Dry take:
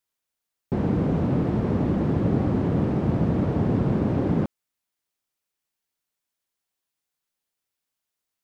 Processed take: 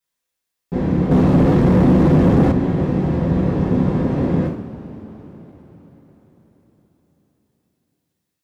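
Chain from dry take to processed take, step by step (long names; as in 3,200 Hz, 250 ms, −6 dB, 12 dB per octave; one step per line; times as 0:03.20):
coupled-rooms reverb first 0.46 s, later 4.8 s, from −20 dB, DRR −7.5 dB
0:01.11–0:02.52: leveller curve on the samples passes 2
level −3.5 dB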